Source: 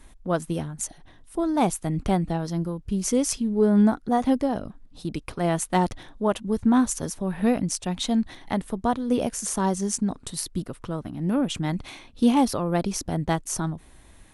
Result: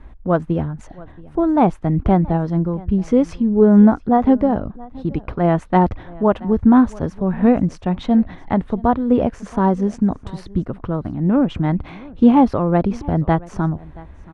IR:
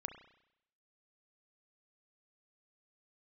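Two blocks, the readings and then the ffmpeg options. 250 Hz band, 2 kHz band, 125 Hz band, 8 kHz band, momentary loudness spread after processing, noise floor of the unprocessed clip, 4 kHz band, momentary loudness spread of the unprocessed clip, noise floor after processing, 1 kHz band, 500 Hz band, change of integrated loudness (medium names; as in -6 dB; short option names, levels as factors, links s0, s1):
+8.0 dB, +3.5 dB, +8.5 dB, under -15 dB, 12 LU, -52 dBFS, no reading, 12 LU, -41 dBFS, +7.0 dB, +7.5 dB, +7.5 dB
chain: -af "lowpass=1600,equalizer=f=67:w=1.2:g=7.5,aecho=1:1:676:0.0794,volume=2.37"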